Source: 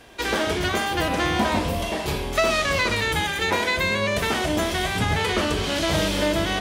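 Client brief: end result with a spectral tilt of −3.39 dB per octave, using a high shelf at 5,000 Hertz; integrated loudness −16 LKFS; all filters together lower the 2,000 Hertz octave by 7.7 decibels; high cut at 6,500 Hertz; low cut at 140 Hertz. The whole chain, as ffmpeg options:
ffmpeg -i in.wav -af "highpass=140,lowpass=6500,equalizer=frequency=2000:width_type=o:gain=-8.5,highshelf=frequency=5000:gain=-7,volume=10dB" out.wav

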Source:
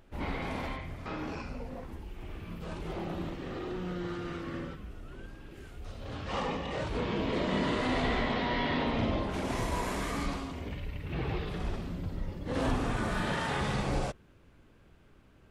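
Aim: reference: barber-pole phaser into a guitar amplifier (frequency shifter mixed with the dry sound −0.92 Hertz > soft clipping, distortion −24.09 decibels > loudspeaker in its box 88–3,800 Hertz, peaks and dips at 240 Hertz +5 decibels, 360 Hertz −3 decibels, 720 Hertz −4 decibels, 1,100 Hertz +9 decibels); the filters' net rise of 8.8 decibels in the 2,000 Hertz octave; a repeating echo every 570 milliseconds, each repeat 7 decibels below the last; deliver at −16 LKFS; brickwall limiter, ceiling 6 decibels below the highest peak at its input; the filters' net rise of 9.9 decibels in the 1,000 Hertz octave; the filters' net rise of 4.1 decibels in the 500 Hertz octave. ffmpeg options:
ffmpeg -i in.wav -filter_complex "[0:a]equalizer=frequency=500:width_type=o:gain=5,equalizer=frequency=1000:width_type=o:gain=3.5,equalizer=frequency=2000:width_type=o:gain=8.5,alimiter=limit=-19dB:level=0:latency=1,aecho=1:1:570|1140|1710|2280|2850:0.447|0.201|0.0905|0.0407|0.0183,asplit=2[link_01][link_02];[link_02]afreqshift=-0.92[link_03];[link_01][link_03]amix=inputs=2:normalize=1,asoftclip=threshold=-20.5dB,highpass=88,equalizer=frequency=240:width_type=q:width=4:gain=5,equalizer=frequency=360:width_type=q:width=4:gain=-3,equalizer=frequency=720:width_type=q:width=4:gain=-4,equalizer=frequency=1100:width_type=q:width=4:gain=9,lowpass=frequency=3800:width=0.5412,lowpass=frequency=3800:width=1.3066,volume=16.5dB" out.wav

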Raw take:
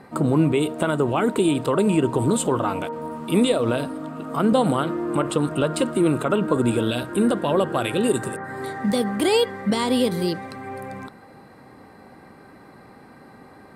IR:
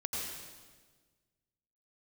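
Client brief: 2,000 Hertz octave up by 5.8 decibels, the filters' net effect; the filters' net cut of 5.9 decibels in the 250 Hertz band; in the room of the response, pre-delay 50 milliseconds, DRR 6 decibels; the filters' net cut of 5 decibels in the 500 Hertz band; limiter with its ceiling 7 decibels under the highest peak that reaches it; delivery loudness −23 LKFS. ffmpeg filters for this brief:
-filter_complex "[0:a]equalizer=frequency=250:width_type=o:gain=-6.5,equalizer=frequency=500:width_type=o:gain=-4.5,equalizer=frequency=2000:width_type=o:gain=8.5,alimiter=limit=-15dB:level=0:latency=1,asplit=2[link_01][link_02];[1:a]atrim=start_sample=2205,adelay=50[link_03];[link_02][link_03]afir=irnorm=-1:irlink=0,volume=-9dB[link_04];[link_01][link_04]amix=inputs=2:normalize=0,volume=2.5dB"

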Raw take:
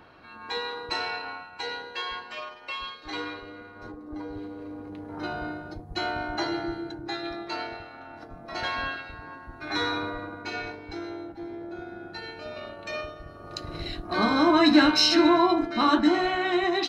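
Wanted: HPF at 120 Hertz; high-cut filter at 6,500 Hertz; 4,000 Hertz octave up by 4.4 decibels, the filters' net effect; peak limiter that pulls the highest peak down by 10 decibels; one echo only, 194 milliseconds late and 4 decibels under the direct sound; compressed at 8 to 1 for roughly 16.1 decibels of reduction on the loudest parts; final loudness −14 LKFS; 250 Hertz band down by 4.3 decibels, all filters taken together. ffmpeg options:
ffmpeg -i in.wav -af "highpass=120,lowpass=6500,equalizer=frequency=250:width_type=o:gain=-6,equalizer=frequency=4000:width_type=o:gain=5.5,acompressor=threshold=-31dB:ratio=8,alimiter=level_in=3.5dB:limit=-24dB:level=0:latency=1,volume=-3.5dB,aecho=1:1:194:0.631,volume=22dB" out.wav

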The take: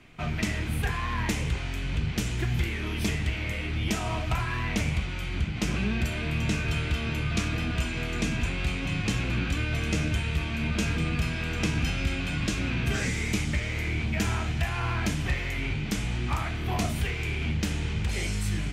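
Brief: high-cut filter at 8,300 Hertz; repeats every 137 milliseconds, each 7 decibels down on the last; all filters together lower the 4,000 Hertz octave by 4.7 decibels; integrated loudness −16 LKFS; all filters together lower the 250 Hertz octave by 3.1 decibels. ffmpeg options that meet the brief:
ffmpeg -i in.wav -af "lowpass=8300,equalizer=frequency=250:width_type=o:gain=-4.5,equalizer=frequency=4000:width_type=o:gain=-6.5,aecho=1:1:137|274|411|548|685:0.447|0.201|0.0905|0.0407|0.0183,volume=14dB" out.wav

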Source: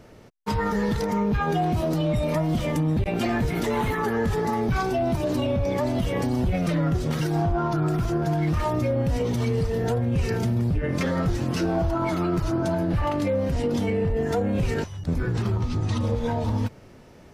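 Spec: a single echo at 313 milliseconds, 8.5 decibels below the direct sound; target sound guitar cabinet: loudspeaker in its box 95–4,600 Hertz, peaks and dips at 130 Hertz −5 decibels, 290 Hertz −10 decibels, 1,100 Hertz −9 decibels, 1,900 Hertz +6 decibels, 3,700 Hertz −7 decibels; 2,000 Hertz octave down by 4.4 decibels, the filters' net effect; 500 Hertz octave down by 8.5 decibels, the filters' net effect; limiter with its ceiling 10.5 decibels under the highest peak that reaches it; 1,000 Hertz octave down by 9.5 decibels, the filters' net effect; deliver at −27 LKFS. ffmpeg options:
ffmpeg -i in.wav -af "equalizer=frequency=500:width_type=o:gain=-7.5,equalizer=frequency=1000:width_type=o:gain=-5.5,equalizer=frequency=2000:width_type=o:gain=-6,alimiter=level_in=2.5dB:limit=-24dB:level=0:latency=1,volume=-2.5dB,highpass=95,equalizer=frequency=130:width_type=q:width=4:gain=-5,equalizer=frequency=290:width_type=q:width=4:gain=-10,equalizer=frequency=1100:width_type=q:width=4:gain=-9,equalizer=frequency=1900:width_type=q:width=4:gain=6,equalizer=frequency=3700:width_type=q:width=4:gain=-7,lowpass=frequency=4600:width=0.5412,lowpass=frequency=4600:width=1.3066,aecho=1:1:313:0.376,volume=9.5dB" out.wav

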